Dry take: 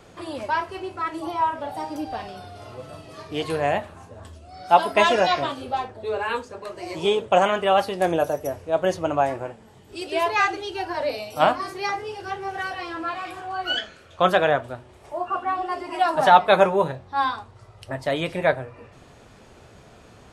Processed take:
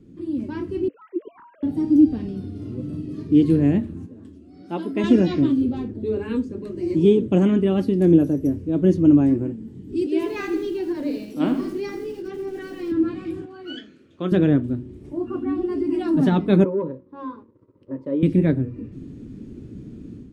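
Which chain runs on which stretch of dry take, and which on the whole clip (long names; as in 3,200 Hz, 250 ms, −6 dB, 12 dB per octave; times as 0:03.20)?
0:00.88–0:01.63: three sine waves on the formant tracks + downward compressor 4 to 1, threshold −32 dBFS
0:04.06–0:05.04: high-pass filter 570 Hz 6 dB per octave + high-shelf EQ 2,800 Hz −6.5 dB
0:10.06–0:12.92: high-pass filter 320 Hz + feedback echo at a low word length 81 ms, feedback 55%, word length 6 bits, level −9 dB
0:13.45–0:14.32: high-pass filter 830 Hz 6 dB per octave + high-shelf EQ 4,900 Hz −7.5 dB
0:16.64–0:18.23: leveller curve on the samples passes 2 + pair of resonant band-passes 730 Hz, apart 0.85 octaves
whole clip: drawn EQ curve 100 Hz 0 dB, 290 Hz +11 dB, 690 Hz −27 dB, 1,300 Hz −24 dB, 2,000 Hz −20 dB; automatic gain control gain up to 9.5 dB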